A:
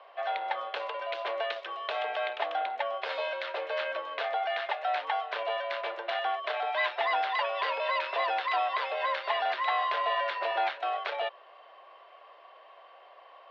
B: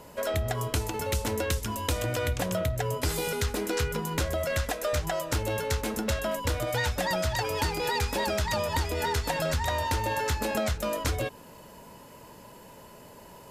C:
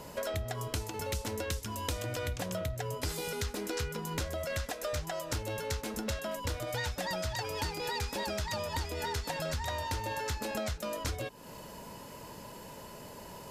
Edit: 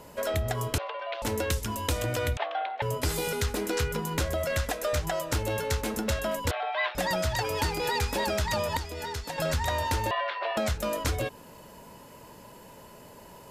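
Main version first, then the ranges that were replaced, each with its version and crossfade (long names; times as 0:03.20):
B
0:00.78–0:01.22: punch in from A
0:02.37–0:02.82: punch in from A
0:06.51–0:06.95: punch in from A
0:08.77–0:09.38: punch in from C
0:10.11–0:10.57: punch in from A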